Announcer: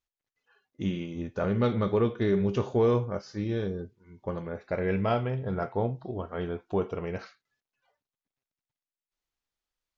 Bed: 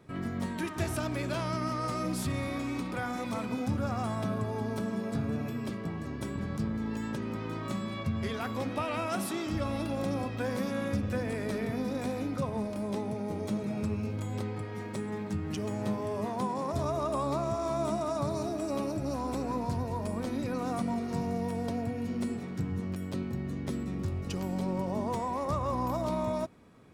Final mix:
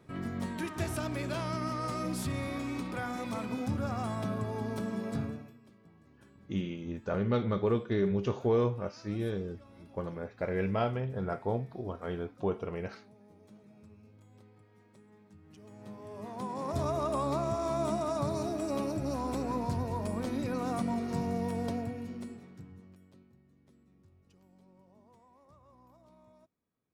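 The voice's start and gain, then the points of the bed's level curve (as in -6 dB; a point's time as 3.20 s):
5.70 s, -3.5 dB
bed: 5.23 s -2 dB
5.60 s -23.5 dB
15.37 s -23.5 dB
16.78 s -0.5 dB
21.70 s -0.5 dB
23.44 s -29.5 dB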